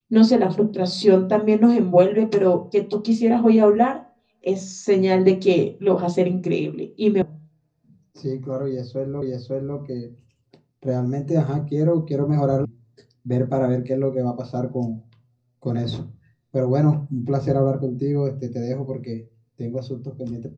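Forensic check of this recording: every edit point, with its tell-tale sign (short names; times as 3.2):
7.22 sound cut off
9.22 repeat of the last 0.55 s
12.65 sound cut off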